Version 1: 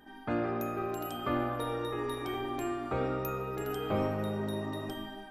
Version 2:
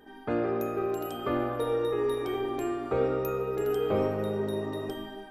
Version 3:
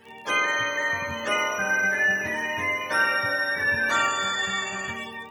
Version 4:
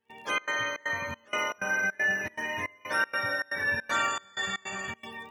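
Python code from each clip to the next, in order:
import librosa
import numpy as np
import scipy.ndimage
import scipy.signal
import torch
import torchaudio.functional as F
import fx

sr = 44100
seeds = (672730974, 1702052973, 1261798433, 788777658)

y1 = fx.peak_eq(x, sr, hz=440.0, db=11.0, octaves=0.49)
y2 = fx.octave_mirror(y1, sr, pivot_hz=850.0)
y2 = fx.dmg_crackle(y2, sr, seeds[0], per_s=11.0, level_db=-45.0)
y2 = y2 * librosa.db_to_amplitude(7.0)
y3 = fx.step_gate(y2, sr, bpm=158, pattern='.xxx.xxx.xxx..xx', floor_db=-24.0, edge_ms=4.5)
y3 = y3 * librosa.db_to_amplitude(-4.5)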